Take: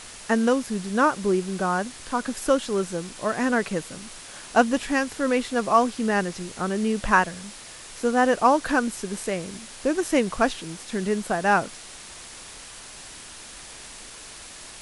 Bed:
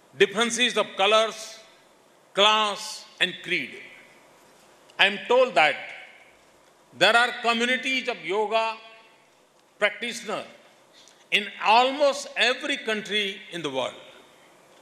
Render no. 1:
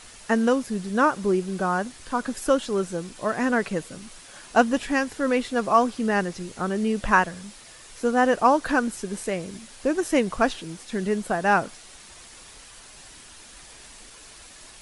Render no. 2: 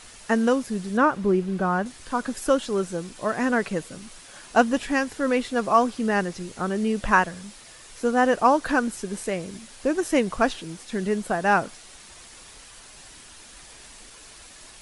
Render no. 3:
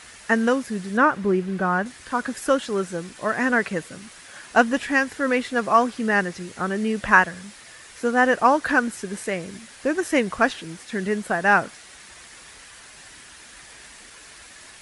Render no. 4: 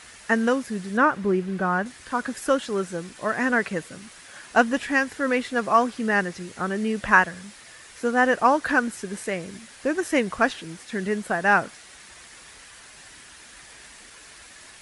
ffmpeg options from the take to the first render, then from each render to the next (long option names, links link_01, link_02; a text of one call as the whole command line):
ffmpeg -i in.wav -af "afftdn=noise_reduction=6:noise_floor=-42" out.wav
ffmpeg -i in.wav -filter_complex "[0:a]asettb=1/sr,asplit=3[link_01][link_02][link_03];[link_01]atrim=end=0.974[link_04];[link_02]atrim=start=0.97:end=1.86,asetpts=PTS-STARTPTS,afade=type=in:duration=0.004:curve=qsin,afade=type=out:start_time=0.886:duration=0.004:curve=qsin,bass=frequency=250:gain=4,treble=frequency=4000:gain=-9[link_05];[link_03]atrim=start=1.856[link_06];[link_04][link_05]acrossfade=duration=0.004:curve1=hsin:curve2=qsin[link_07];[link_07][link_06]acrossfade=duration=0.004:curve1=qsin:curve2=hsin" out.wav
ffmpeg -i in.wav -af "highpass=50,equalizer=frequency=1800:width=1.6:gain=7" out.wav
ffmpeg -i in.wav -af "volume=-1.5dB" out.wav